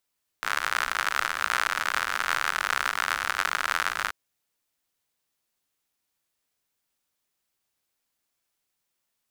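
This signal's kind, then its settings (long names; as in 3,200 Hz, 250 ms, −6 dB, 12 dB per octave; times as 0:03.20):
rain-like ticks over hiss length 3.68 s, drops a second 84, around 1,400 Hz, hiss −23 dB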